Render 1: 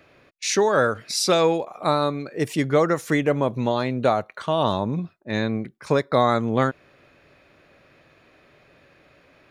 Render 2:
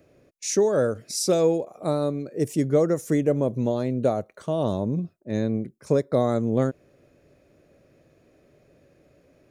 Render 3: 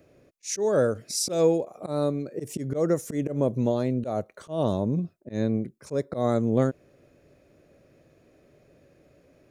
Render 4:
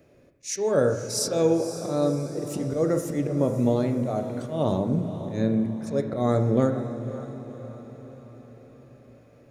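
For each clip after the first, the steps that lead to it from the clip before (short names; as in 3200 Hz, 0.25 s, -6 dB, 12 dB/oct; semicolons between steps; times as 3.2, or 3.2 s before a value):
band shelf 1900 Hz -13 dB 2.8 oct
auto swell 0.125 s
diffused feedback echo 0.532 s, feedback 52%, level -12 dB; reverb RT60 1.1 s, pre-delay 7 ms, DRR 5.5 dB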